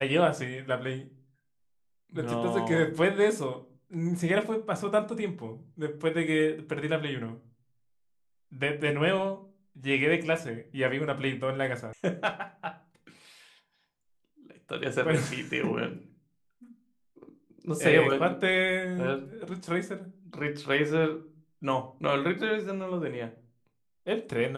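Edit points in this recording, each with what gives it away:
11.93 sound cut off

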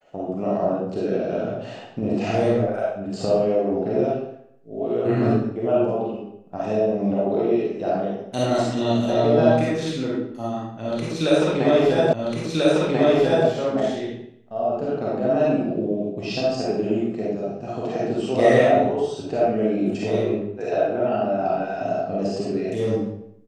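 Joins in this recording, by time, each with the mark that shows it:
12.13 repeat of the last 1.34 s

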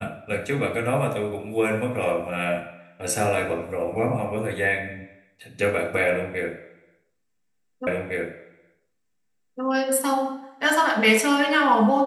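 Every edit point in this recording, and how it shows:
7.87 repeat of the last 1.76 s

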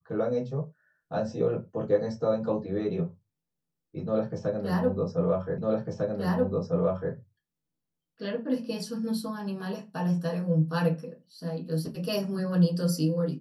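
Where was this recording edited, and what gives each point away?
5.58 repeat of the last 1.55 s

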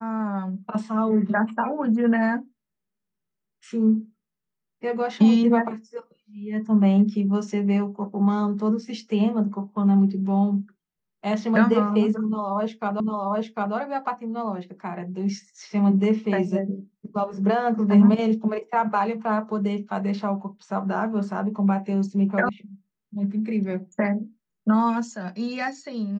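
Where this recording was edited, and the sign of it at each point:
13 repeat of the last 0.75 s
22.49 sound cut off

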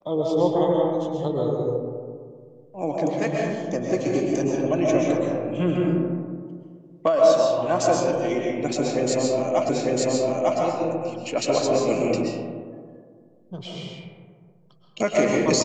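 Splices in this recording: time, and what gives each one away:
9.69 repeat of the last 0.9 s

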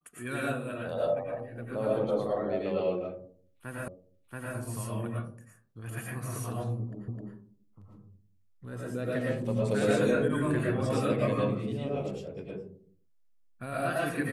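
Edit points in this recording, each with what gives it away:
3.88 repeat of the last 0.68 s
7.08 repeat of the last 0.26 s

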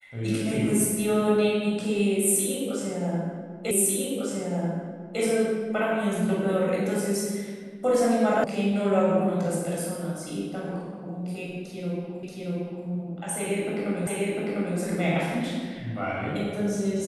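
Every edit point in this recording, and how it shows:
3.71 repeat of the last 1.5 s
8.44 sound cut off
12.23 repeat of the last 0.63 s
14.07 repeat of the last 0.7 s

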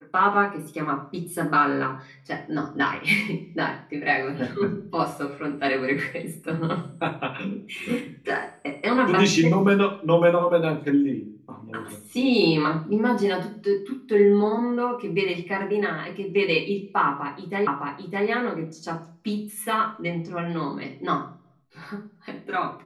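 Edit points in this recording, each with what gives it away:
17.67 repeat of the last 0.61 s

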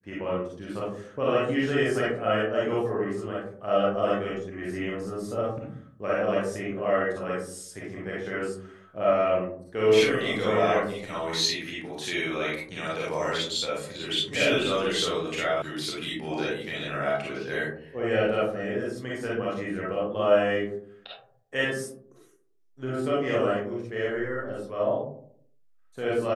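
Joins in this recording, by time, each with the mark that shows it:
15.62 sound cut off

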